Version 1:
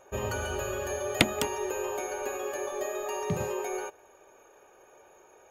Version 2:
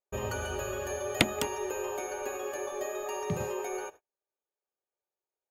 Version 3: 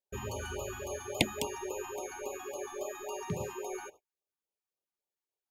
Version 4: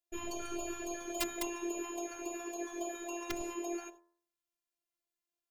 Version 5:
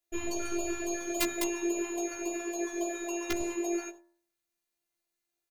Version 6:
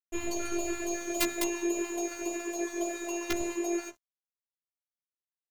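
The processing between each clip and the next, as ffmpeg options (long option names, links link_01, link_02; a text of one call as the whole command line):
ffmpeg -i in.wav -af "agate=range=-39dB:threshold=-46dB:ratio=16:detection=peak,volume=-2dB" out.wav
ffmpeg -i in.wav -af "afftfilt=real='re*(1-between(b*sr/1024,460*pow(1800/460,0.5+0.5*sin(2*PI*3.6*pts/sr))/1.41,460*pow(1800/460,0.5+0.5*sin(2*PI*3.6*pts/sr))*1.41))':imag='im*(1-between(b*sr/1024,460*pow(1800/460,0.5+0.5*sin(2*PI*3.6*pts/sr))/1.41,460*pow(1800/460,0.5+0.5*sin(2*PI*3.6*pts/sr))*1.41))':win_size=1024:overlap=0.75,volume=-3dB" out.wav
ffmpeg -i in.wav -af "aeval=exprs='(mod(17.8*val(0)+1,2)-1)/17.8':channel_layout=same,bandreject=frequency=84.46:width_type=h:width=4,bandreject=frequency=168.92:width_type=h:width=4,bandreject=frequency=253.38:width_type=h:width=4,bandreject=frequency=337.84:width_type=h:width=4,bandreject=frequency=422.3:width_type=h:width=4,bandreject=frequency=506.76:width_type=h:width=4,bandreject=frequency=591.22:width_type=h:width=4,bandreject=frequency=675.68:width_type=h:width=4,bandreject=frequency=760.14:width_type=h:width=4,bandreject=frequency=844.6:width_type=h:width=4,bandreject=frequency=929.06:width_type=h:width=4,bandreject=frequency=1013.52:width_type=h:width=4,bandreject=frequency=1097.98:width_type=h:width=4,bandreject=frequency=1182.44:width_type=h:width=4,bandreject=frequency=1266.9:width_type=h:width=4,bandreject=frequency=1351.36:width_type=h:width=4,bandreject=frequency=1435.82:width_type=h:width=4,bandreject=frequency=1520.28:width_type=h:width=4,bandreject=frequency=1604.74:width_type=h:width=4,bandreject=frequency=1689.2:width_type=h:width=4,bandreject=frequency=1773.66:width_type=h:width=4,bandreject=frequency=1858.12:width_type=h:width=4,bandreject=frequency=1942.58:width_type=h:width=4,bandreject=frequency=2027.04:width_type=h:width=4,afftfilt=real='hypot(re,im)*cos(PI*b)':imag='0':win_size=512:overlap=0.75,volume=3.5dB" out.wav
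ffmpeg -i in.wav -filter_complex "[0:a]asplit=2[link_01][link_02];[link_02]adelay=15,volume=-3dB[link_03];[link_01][link_03]amix=inputs=2:normalize=0,volume=4dB" out.wav
ffmpeg -i in.wav -af "aeval=exprs='sgn(val(0))*max(abs(val(0))-0.00335,0)':channel_layout=same,volume=1.5dB" out.wav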